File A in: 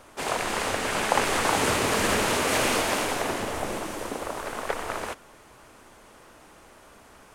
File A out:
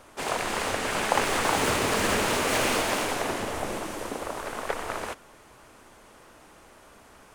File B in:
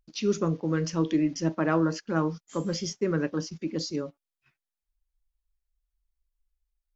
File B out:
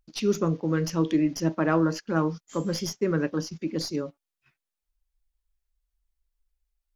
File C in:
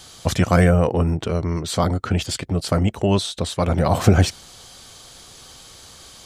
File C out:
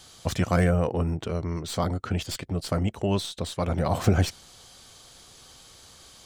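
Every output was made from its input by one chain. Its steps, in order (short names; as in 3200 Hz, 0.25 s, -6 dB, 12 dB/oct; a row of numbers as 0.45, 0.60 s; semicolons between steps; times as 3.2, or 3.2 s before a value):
tracing distortion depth 0.022 ms; match loudness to -27 LUFS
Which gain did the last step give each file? -1.0, +1.5, -7.0 dB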